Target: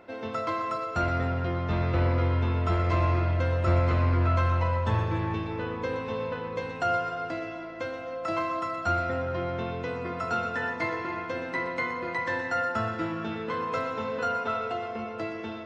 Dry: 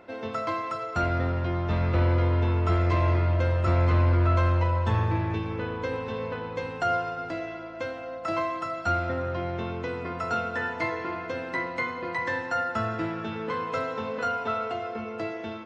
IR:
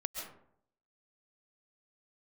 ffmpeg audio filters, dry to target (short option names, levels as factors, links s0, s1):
-filter_complex "[0:a]asplit=2[s0][s1];[1:a]atrim=start_sample=2205,adelay=122[s2];[s1][s2]afir=irnorm=-1:irlink=0,volume=0.355[s3];[s0][s3]amix=inputs=2:normalize=0,volume=0.891"